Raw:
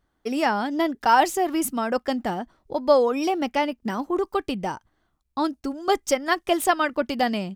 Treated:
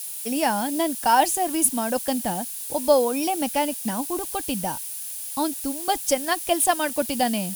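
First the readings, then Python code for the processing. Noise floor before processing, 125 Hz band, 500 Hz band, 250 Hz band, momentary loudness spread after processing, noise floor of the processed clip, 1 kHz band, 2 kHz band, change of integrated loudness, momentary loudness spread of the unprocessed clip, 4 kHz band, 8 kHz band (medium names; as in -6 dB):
-72 dBFS, +1.0 dB, -1.0 dB, -0.5 dB, 8 LU, -34 dBFS, -0.5 dB, -2.5 dB, +0.5 dB, 11 LU, +1.5 dB, +11.0 dB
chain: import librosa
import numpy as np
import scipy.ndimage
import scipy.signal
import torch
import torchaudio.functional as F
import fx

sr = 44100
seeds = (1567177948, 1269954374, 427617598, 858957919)

y = np.where(np.abs(x) >= 10.0 ** (-45.0 / 20.0), x, 0.0)
y = fx.dmg_noise_colour(y, sr, seeds[0], colour='blue', level_db=-39.0)
y = fx.graphic_eq_31(y, sr, hz=(400, 1250, 2000, 10000, 16000), db=(-12, -12, -6, 12, 4))
y = y * 10.0 ** (1.5 / 20.0)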